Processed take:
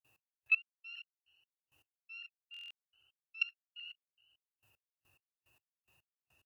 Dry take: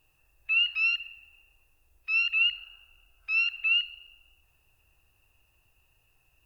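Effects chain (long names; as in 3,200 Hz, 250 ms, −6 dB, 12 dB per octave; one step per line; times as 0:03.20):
high-pass filter 90 Hz 24 dB per octave
in parallel at +0.5 dB: downward compressor 6 to 1, threshold −40 dBFS, peak gain reduction 17.5 dB
on the sum: echo with shifted repeats 111 ms, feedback 58%, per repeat +45 Hz, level −16 dB
granular cloud 212 ms, grains 2.4 per second, pitch spread up and down by 0 semitones
output level in coarse steps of 24 dB
buffer that repeats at 0:02.52, samples 1,024, times 7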